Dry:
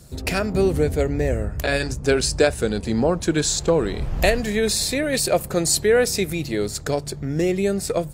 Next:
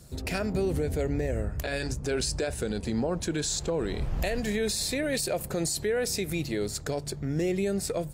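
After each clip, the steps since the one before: dynamic EQ 1200 Hz, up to -4 dB, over -44 dBFS, Q 5.3; limiter -15.5 dBFS, peak gain reduction 11.5 dB; gain -4.5 dB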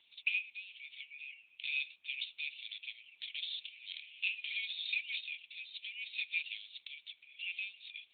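brick-wall FIR high-pass 2200 Hz; gain +7 dB; AMR-NB 7.95 kbps 8000 Hz

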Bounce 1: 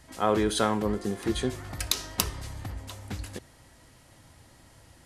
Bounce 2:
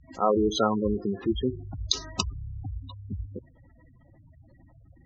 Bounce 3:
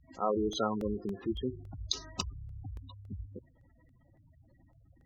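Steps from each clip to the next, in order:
spectral gate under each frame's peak -10 dB strong; Chebyshev low-pass 7300 Hz, order 8; gain +3.5 dB
crackling interface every 0.28 s, samples 64, repeat, from 0.53; gain -7.5 dB

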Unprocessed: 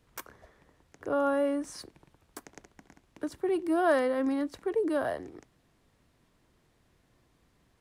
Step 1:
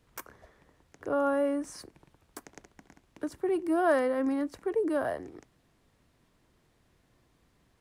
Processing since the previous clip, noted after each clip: dynamic EQ 3700 Hz, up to -6 dB, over -57 dBFS, Q 1.8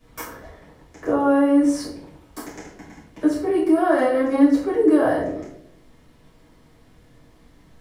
limiter -25 dBFS, peak gain reduction 10 dB; reverb RT60 0.65 s, pre-delay 5 ms, DRR -9.5 dB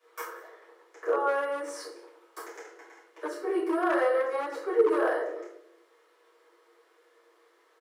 echo 0.183 s -21 dB; overloaded stage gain 12.5 dB; rippled Chebyshev high-pass 330 Hz, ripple 9 dB

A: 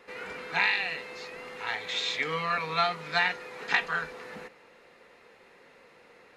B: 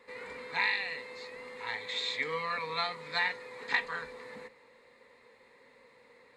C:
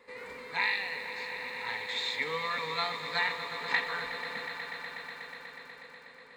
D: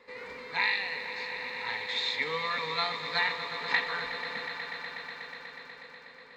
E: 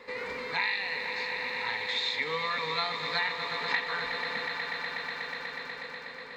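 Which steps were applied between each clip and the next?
ripple EQ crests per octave 0.99, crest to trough 9 dB; gain -6 dB
swelling echo 0.122 s, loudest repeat 5, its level -13.5 dB; lo-fi delay 81 ms, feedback 35%, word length 8-bit, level -15 dB
resonant high shelf 7100 Hz -8.5 dB, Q 1.5; gain +1 dB
compressor 2:1, threshold -42 dBFS, peak gain reduction 11 dB; gain +8 dB

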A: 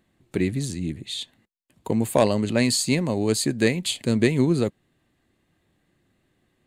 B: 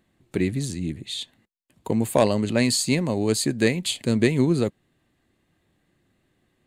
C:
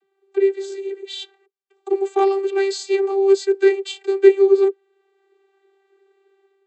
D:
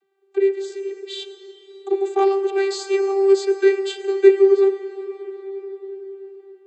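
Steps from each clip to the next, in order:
nothing audible
AGC gain up to 8.5 dB; vocoder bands 32, saw 391 Hz; gain +1.5 dB
reverb RT60 5.1 s, pre-delay 42 ms, DRR 9.5 dB; gain -1 dB

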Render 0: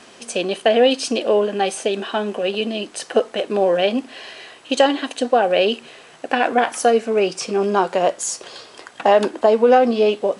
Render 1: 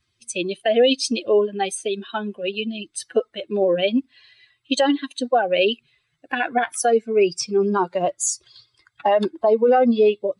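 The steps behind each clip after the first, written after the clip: per-bin expansion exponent 2; bell 950 Hz -2 dB 1.5 oct; maximiser +13 dB; gain -8 dB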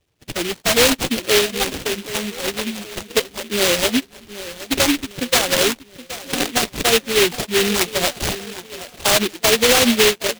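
sample-rate reducer 2000 Hz, jitter 0%; feedback echo 0.772 s, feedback 45%, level -15 dB; noise-modulated delay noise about 2700 Hz, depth 0.26 ms; gain +1.5 dB

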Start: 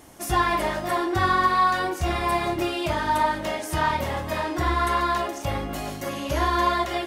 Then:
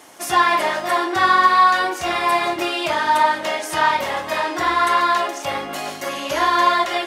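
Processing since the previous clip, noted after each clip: weighting filter A; gain +6.5 dB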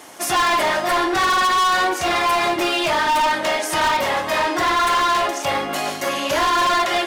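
hard clip -19.5 dBFS, distortion -7 dB; gain +4 dB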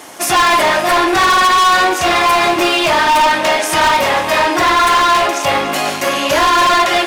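rattling part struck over -41 dBFS, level -24 dBFS; thinning echo 0.286 s, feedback 78%, level -17 dB; gain +6.5 dB

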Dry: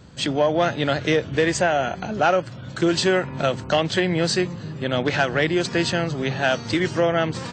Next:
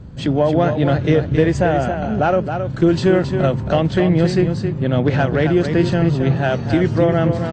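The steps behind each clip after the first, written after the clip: tilt -3.5 dB/oct; echo 0.27 s -7.5 dB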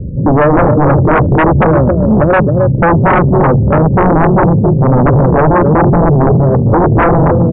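Chebyshev low-pass 580 Hz, order 6; sine folder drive 12 dB, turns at -4.5 dBFS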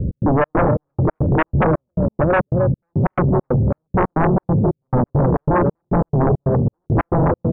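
limiter -11.5 dBFS, peak gain reduction 7 dB; step gate "x.xx.xx.." 137 bpm -60 dB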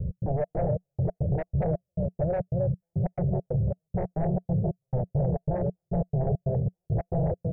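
EQ curve 180 Hz 0 dB, 260 Hz -20 dB, 420 Hz -4 dB, 680 Hz +1 dB, 1100 Hz -27 dB, 2000 Hz -12 dB, 3100 Hz -24 dB, 5000 Hz +7 dB; gain -8.5 dB

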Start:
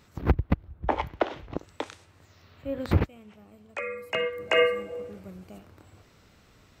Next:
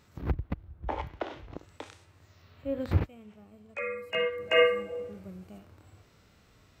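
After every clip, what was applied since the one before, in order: harmonic-percussive split percussive -10 dB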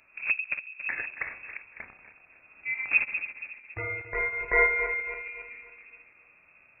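regenerating reverse delay 0.139 s, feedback 63%, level -9.5 dB; inverted band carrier 2600 Hz

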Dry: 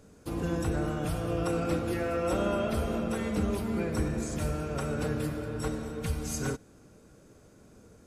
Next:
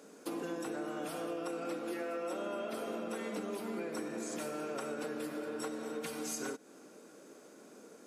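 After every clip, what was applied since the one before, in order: HPF 250 Hz 24 dB/oct; compressor 6:1, threshold -40 dBFS, peak gain reduction 13.5 dB; gain +3.5 dB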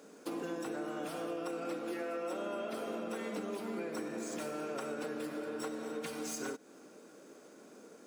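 median filter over 3 samples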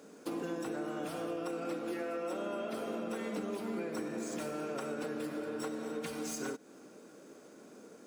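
low shelf 150 Hz +8.5 dB

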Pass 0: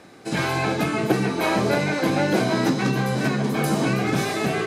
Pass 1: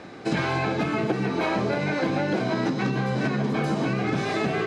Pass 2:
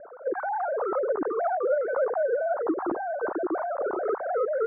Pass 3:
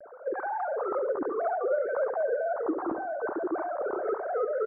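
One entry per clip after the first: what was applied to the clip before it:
compressor 10:1, threshold -27 dBFS, peak gain reduction 13 dB; air absorption 110 m; gain +6 dB
sine-wave speech; steep low-pass 1400 Hz 48 dB/oct; gain -1.5 dB
vibrato 0.59 Hz 30 cents; on a send: feedback echo 68 ms, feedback 36%, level -10.5 dB; on the sum: gain -3 dB

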